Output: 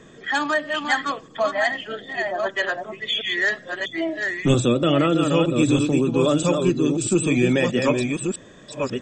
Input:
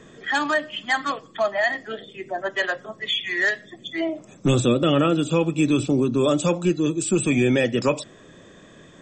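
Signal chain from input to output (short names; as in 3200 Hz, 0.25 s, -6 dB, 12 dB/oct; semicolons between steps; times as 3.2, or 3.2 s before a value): reverse delay 0.643 s, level -4.5 dB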